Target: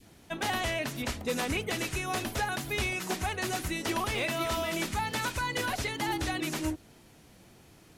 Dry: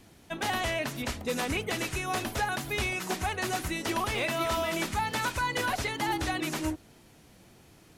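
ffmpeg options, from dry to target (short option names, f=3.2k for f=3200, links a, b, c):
-af "adynamicequalizer=threshold=0.0112:dfrequency=1000:dqfactor=0.79:tfrequency=1000:tqfactor=0.79:attack=5:release=100:ratio=0.375:range=2:mode=cutabove:tftype=bell"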